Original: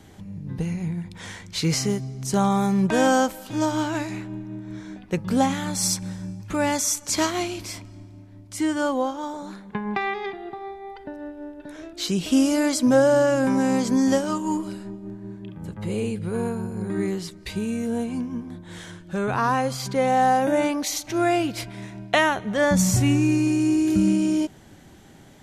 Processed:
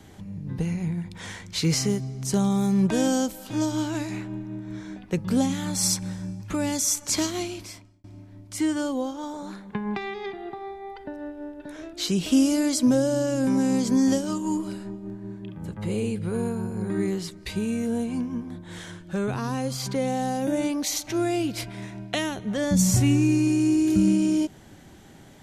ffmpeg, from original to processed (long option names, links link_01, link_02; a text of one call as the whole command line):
ffmpeg -i in.wav -filter_complex "[0:a]asplit=2[link_01][link_02];[link_01]atrim=end=8.04,asetpts=PTS-STARTPTS,afade=type=out:start_time=7.34:duration=0.7[link_03];[link_02]atrim=start=8.04,asetpts=PTS-STARTPTS,afade=type=in:duration=0.004:curve=hsin[link_04];[link_03][link_04]concat=n=2:v=0:a=1,acrossover=split=450|3000[link_05][link_06][link_07];[link_06]acompressor=threshold=-35dB:ratio=6[link_08];[link_05][link_08][link_07]amix=inputs=3:normalize=0" out.wav